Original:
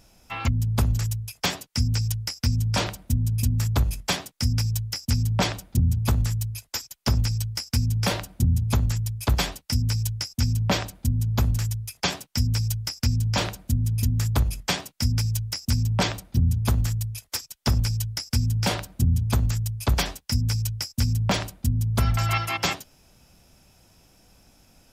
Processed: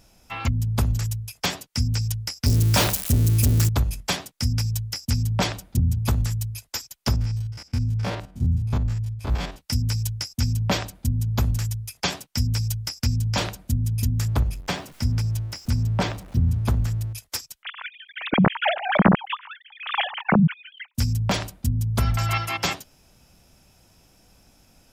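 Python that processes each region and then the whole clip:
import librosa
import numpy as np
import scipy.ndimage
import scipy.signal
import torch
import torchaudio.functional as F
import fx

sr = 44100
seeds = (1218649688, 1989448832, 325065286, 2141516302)

y = fx.chain(x, sr, fx.crossing_spikes(level_db=-23.5),
    fx.leveller(passes=2), at=(2.46, 3.69))
y = fx.chain(y, sr, fx.spec_steps(hold_ms=50),
    fx.lowpass(hz=2000.0, slope=6), at=(7.16, 9.58))
y = fx.chain(y, sr, fx.zero_step(step_db=-39.5),
    fx.high_shelf(hz=3000.0, db=-9.0), at=(14.25, 17.13))
y = fx.chain(y, sr, fx.sine_speech(),
    fx.pre_swell(db_per_s=94.0), at=(17.63, 20.95))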